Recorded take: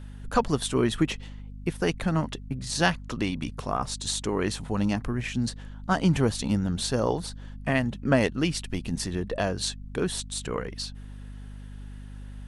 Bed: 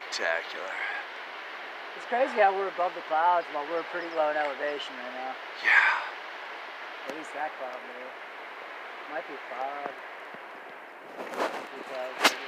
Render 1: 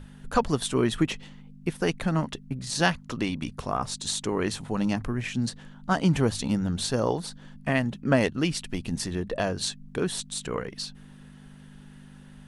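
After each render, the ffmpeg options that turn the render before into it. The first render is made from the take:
-af "bandreject=f=50:t=h:w=6,bandreject=f=100:t=h:w=6"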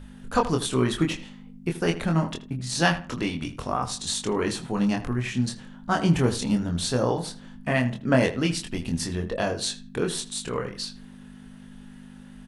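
-filter_complex "[0:a]asplit=2[a][b];[b]adelay=24,volume=-4dB[c];[a][c]amix=inputs=2:normalize=0,asplit=2[d][e];[e]adelay=80,lowpass=f=2.6k:p=1,volume=-13dB,asplit=2[f][g];[g]adelay=80,lowpass=f=2.6k:p=1,volume=0.28,asplit=2[h][i];[i]adelay=80,lowpass=f=2.6k:p=1,volume=0.28[j];[d][f][h][j]amix=inputs=4:normalize=0"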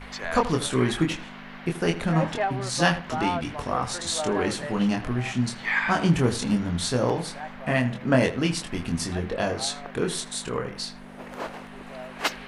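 -filter_complex "[1:a]volume=-4.5dB[a];[0:a][a]amix=inputs=2:normalize=0"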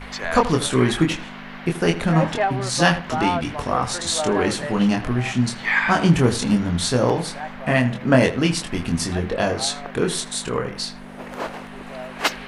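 -af "volume=5dB,alimiter=limit=-1dB:level=0:latency=1"

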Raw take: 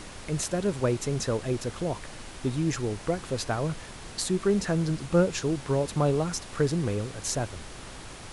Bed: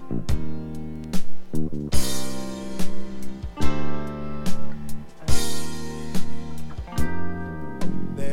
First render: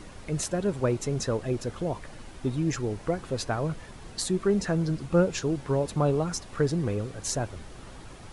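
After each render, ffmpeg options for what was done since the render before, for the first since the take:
-af "afftdn=nr=8:nf=-43"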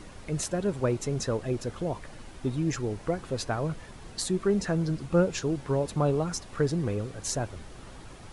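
-af "volume=-1dB"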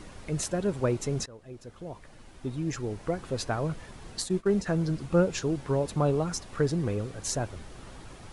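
-filter_complex "[0:a]asplit=3[a][b][c];[a]afade=t=out:st=4.21:d=0.02[d];[b]agate=range=-33dB:threshold=-29dB:ratio=3:release=100:detection=peak,afade=t=in:st=4.21:d=0.02,afade=t=out:st=4.65:d=0.02[e];[c]afade=t=in:st=4.65:d=0.02[f];[d][e][f]amix=inputs=3:normalize=0,asplit=2[g][h];[g]atrim=end=1.26,asetpts=PTS-STARTPTS,afade=t=out:st=1.256:d=0.004:c=hsin:silence=0.0794328[i];[h]atrim=start=1.26,asetpts=PTS-STARTPTS,afade=t=in:d=2.11:silence=0.0794328[j];[i][j]concat=n=2:v=0:a=1"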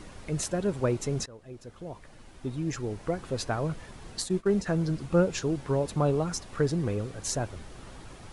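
-af anull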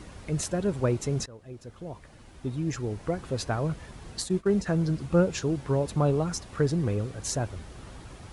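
-af "highpass=49,lowshelf=f=91:g=9"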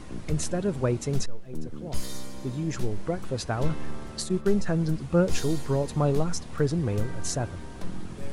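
-filter_complex "[1:a]volume=-10.5dB[a];[0:a][a]amix=inputs=2:normalize=0"

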